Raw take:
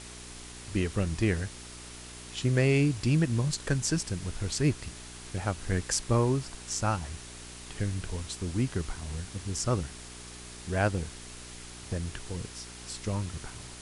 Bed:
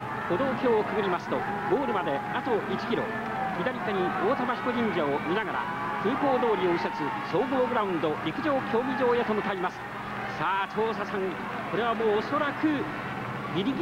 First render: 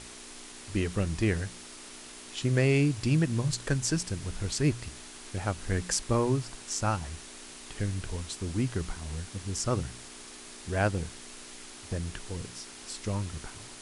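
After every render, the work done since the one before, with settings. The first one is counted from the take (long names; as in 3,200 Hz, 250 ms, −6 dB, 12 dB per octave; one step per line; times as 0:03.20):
hum removal 60 Hz, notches 3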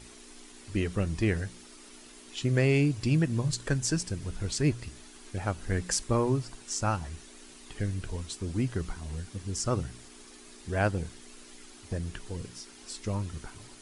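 broadband denoise 8 dB, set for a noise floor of −47 dBFS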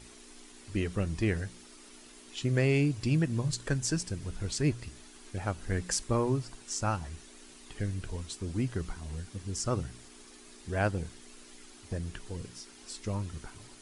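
level −2 dB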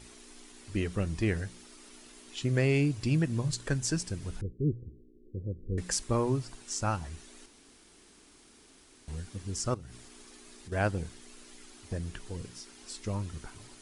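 0:04.41–0:05.78: Chebyshev low-pass with heavy ripple 520 Hz, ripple 3 dB
0:07.46–0:09.08: fill with room tone
0:09.74–0:10.72: downward compressor 4 to 1, threshold −43 dBFS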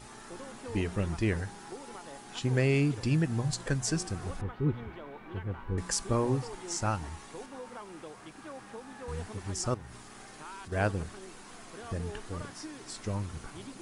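mix in bed −18.5 dB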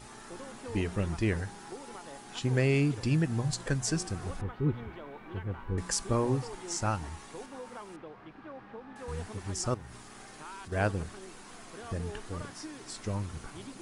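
0:07.96–0:08.96: high-frequency loss of the air 340 metres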